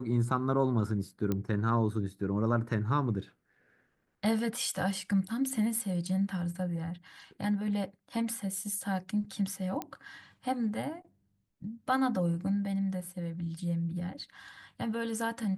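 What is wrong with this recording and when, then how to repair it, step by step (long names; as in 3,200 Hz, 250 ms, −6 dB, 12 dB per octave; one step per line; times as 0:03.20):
0:01.32: click −18 dBFS
0:09.82: click −20 dBFS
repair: click removal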